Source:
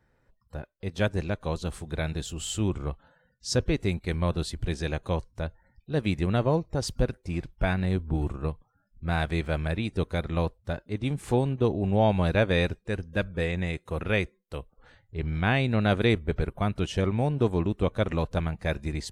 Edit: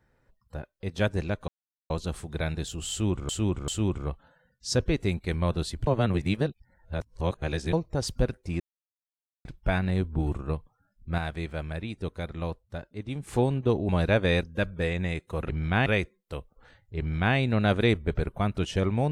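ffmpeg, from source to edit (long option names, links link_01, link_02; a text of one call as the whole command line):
ffmpeg -i in.wav -filter_complex "[0:a]asplit=13[link_01][link_02][link_03][link_04][link_05][link_06][link_07][link_08][link_09][link_10][link_11][link_12][link_13];[link_01]atrim=end=1.48,asetpts=PTS-STARTPTS,afade=type=out:start_time=1.476:duration=0.004:curve=hsin,apad=pad_dur=0.42[link_14];[link_02]atrim=start=1.48:end=2.872,asetpts=PTS-STARTPTS,afade=type=in:duration=0.004:curve=hsin[link_15];[link_03]atrim=start=2.478:end=2.872[link_16];[link_04]atrim=start=2.478:end=4.672[link_17];[link_05]atrim=start=4.668:end=6.532,asetpts=PTS-STARTPTS,areverse[link_18];[link_06]atrim=start=6.528:end=7.4,asetpts=PTS-STARTPTS,afade=type=out:start_time=0.868:duration=0.004:curve=hsin,apad=pad_dur=0.85[link_19];[link_07]atrim=start=7.4:end=9.132,asetpts=PTS-STARTPTS,afade=type=in:duration=0.004:curve=hsin[link_20];[link_08]atrim=start=9.128:end=11.222,asetpts=PTS-STARTPTS,volume=-5.5dB[link_21];[link_09]atrim=start=11.218:end=11.842[link_22];[link_10]atrim=start=12.148:end=12.692[link_23];[link_11]atrim=start=13.008:end=14.072[link_24];[link_12]atrim=start=15.198:end=15.572[link_25];[link_13]atrim=start=14.068[link_26];[link_14][link_15]concat=n=2:v=0:a=1[link_27];[link_27][link_16]acrossfade=duration=0.004:curve1=hsin:curve2=hsin[link_28];[link_28][link_17]acrossfade=duration=0.004:curve1=hsin:curve2=hsin[link_29];[link_29][link_18]acrossfade=duration=0.004:curve1=hsin:curve2=hsin[link_30];[link_19][link_20]concat=n=2:v=0:a=1[link_31];[link_30][link_31]acrossfade=duration=0.004:curve1=hsin:curve2=hsin[link_32];[link_32][link_21]acrossfade=duration=0.004:curve1=hsin:curve2=hsin[link_33];[link_33][link_22]acrossfade=duration=0.004:curve1=hsin:curve2=hsin[link_34];[link_34][link_23]acrossfade=duration=0.004:curve1=hsin:curve2=hsin[link_35];[link_35][link_24]acrossfade=duration=0.004:curve1=hsin:curve2=hsin[link_36];[link_36][link_25]acrossfade=duration=0.004:curve1=hsin:curve2=hsin[link_37];[link_37][link_26]acrossfade=duration=0.004:curve1=hsin:curve2=hsin" out.wav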